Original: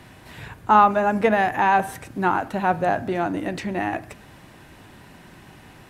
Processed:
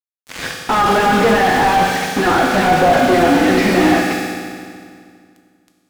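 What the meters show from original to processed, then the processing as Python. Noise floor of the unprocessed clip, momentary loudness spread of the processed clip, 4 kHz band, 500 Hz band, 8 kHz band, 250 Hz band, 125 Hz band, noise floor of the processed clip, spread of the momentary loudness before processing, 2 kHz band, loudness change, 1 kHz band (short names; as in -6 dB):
-48 dBFS, 14 LU, +18.0 dB, +9.0 dB, +17.5 dB, +11.0 dB, +9.0 dB, -62 dBFS, 16 LU, +9.5 dB, +7.5 dB, +5.5 dB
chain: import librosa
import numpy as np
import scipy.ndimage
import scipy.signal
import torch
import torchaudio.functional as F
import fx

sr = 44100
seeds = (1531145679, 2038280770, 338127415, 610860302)

y = fx.cabinet(x, sr, low_hz=180.0, low_slope=24, high_hz=6500.0, hz=(190.0, 410.0, 590.0, 920.0, 2100.0, 5100.0), db=(-9, -4, -3, -9, 4, 10))
y = fx.chorus_voices(y, sr, voices=2, hz=0.46, base_ms=15, depth_ms=3.5, mix_pct=35)
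y = fx.fuzz(y, sr, gain_db=43.0, gate_db=-40.0)
y = fx.rev_fdn(y, sr, rt60_s=2.1, lf_ratio=1.2, hf_ratio=0.9, size_ms=12.0, drr_db=0.5)
y = fx.slew_limit(y, sr, full_power_hz=250.0)
y = y * librosa.db_to_amplitude(1.5)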